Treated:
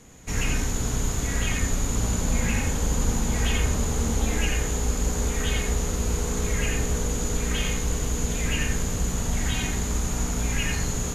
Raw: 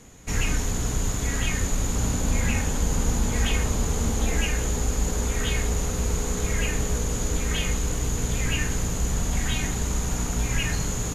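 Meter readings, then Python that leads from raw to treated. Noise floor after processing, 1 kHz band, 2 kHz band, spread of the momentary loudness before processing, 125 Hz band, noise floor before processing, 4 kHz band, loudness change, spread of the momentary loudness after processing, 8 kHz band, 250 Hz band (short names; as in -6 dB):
-29 dBFS, 0.0 dB, 0.0 dB, 2 LU, -0.5 dB, -29 dBFS, 0.0 dB, 0.0 dB, 2 LU, 0.0 dB, +0.5 dB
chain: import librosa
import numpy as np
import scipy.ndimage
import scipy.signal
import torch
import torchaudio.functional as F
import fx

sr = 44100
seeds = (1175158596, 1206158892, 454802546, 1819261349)

y = x + 10.0 ** (-4.0 / 20.0) * np.pad(x, (int(88 * sr / 1000.0), 0))[:len(x)]
y = F.gain(torch.from_numpy(y), -1.5).numpy()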